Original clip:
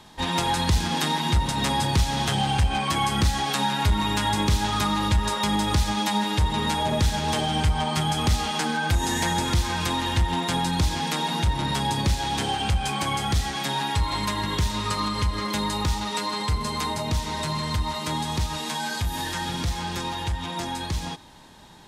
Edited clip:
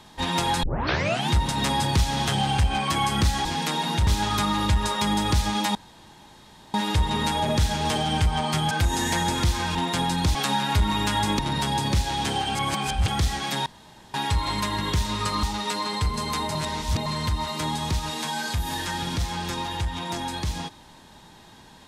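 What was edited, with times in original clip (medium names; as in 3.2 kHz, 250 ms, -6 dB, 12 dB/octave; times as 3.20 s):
0.63 s: tape start 0.67 s
3.45–4.49 s: swap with 10.90–11.52 s
6.17 s: insert room tone 0.99 s
8.14–8.81 s: delete
9.85–10.30 s: delete
12.68–13.21 s: reverse
13.79 s: insert room tone 0.48 s
15.08–15.90 s: delete
17.02–17.53 s: reverse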